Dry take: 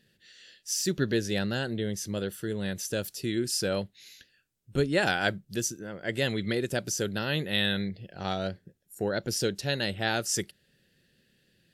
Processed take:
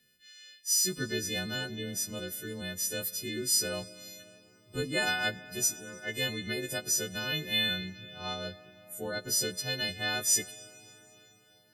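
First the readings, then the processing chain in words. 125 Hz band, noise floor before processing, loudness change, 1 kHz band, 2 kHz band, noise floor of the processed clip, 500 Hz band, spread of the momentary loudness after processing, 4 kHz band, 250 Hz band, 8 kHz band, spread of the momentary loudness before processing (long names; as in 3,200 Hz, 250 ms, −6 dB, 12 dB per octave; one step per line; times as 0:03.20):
−7.5 dB, −70 dBFS, −1.0 dB, −5.5 dB, −1.5 dB, −63 dBFS, −7.0 dB, 15 LU, +1.0 dB, −8.0 dB, +5.0 dB, 8 LU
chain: every partial snapped to a pitch grid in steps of 3 semitones
comb and all-pass reverb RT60 5 s, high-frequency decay 0.8×, pre-delay 55 ms, DRR 17 dB
level −7 dB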